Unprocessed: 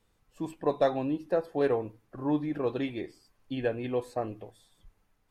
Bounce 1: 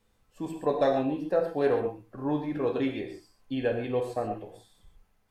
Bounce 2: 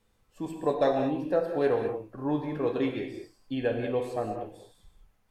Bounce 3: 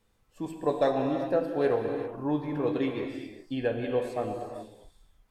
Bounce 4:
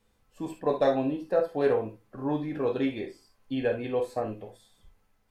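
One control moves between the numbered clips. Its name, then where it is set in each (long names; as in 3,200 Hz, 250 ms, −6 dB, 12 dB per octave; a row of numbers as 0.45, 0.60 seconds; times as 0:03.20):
reverb whose tail is shaped and stops, gate: 160, 240, 420, 90 milliseconds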